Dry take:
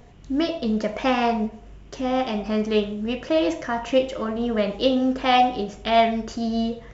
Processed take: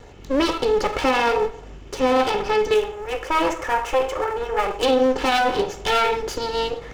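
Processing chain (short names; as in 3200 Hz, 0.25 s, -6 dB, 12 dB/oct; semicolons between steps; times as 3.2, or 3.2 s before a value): minimum comb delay 2.3 ms; 2.74–4.83 graphic EQ 125/250/4000 Hz -7/-10/-10 dB; limiter -19 dBFS, peak gain reduction 10.5 dB; low shelf 88 Hz -5.5 dB; gain +8.5 dB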